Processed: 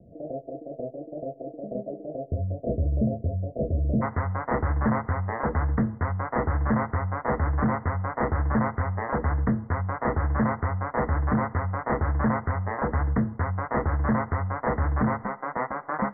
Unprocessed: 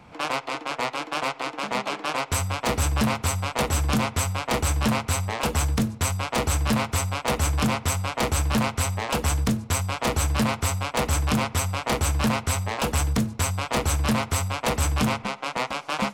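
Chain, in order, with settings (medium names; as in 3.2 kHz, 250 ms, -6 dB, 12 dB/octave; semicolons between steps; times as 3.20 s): Chebyshev low-pass 680 Hz, order 8, from 4.01 s 2 kHz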